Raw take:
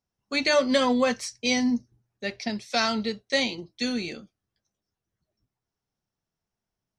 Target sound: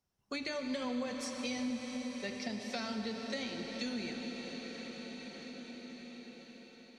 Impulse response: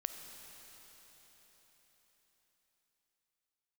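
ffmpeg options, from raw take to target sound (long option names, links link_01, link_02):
-filter_complex "[0:a]acrossover=split=290[link_01][link_02];[link_02]acompressor=threshold=-27dB:ratio=6[link_03];[link_01][link_03]amix=inputs=2:normalize=0[link_04];[1:a]atrim=start_sample=2205,asetrate=29988,aresample=44100[link_05];[link_04][link_05]afir=irnorm=-1:irlink=0,acompressor=threshold=-46dB:ratio=2,volume=1dB"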